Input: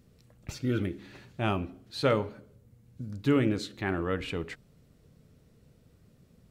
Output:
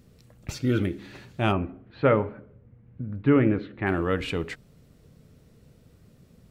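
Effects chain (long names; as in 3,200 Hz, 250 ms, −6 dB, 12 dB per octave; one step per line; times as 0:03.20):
0:01.52–0:03.87: low-pass filter 2,300 Hz 24 dB per octave
level +5 dB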